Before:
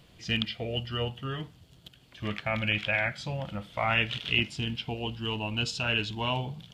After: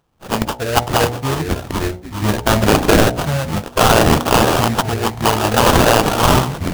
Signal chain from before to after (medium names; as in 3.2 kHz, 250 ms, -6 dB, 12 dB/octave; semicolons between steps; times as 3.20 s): expander on every frequency bin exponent 1.5; one-sided clip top -20.5 dBFS, bottom -16.5 dBFS; treble shelf 3.5 kHz -11 dB; level rider gain up to 14.5 dB; pre-emphasis filter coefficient 0.9; ever faster or slower copies 480 ms, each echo -5 st, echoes 2, each echo -6 dB; sample-rate reducer 2.1 kHz, jitter 20%; de-hum 60.47 Hz, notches 15; loudness maximiser +23 dB; trim -1 dB